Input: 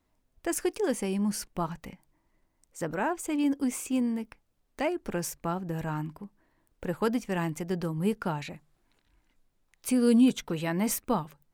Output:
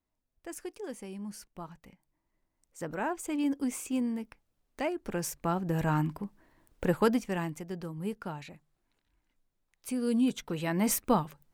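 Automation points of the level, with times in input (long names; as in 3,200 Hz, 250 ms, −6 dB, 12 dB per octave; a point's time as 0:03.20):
0:01.80 −12 dB
0:03.11 −3 dB
0:05.02 −3 dB
0:05.95 +5 dB
0:06.88 +5 dB
0:07.68 −7.5 dB
0:10.05 −7.5 dB
0:11.01 +2 dB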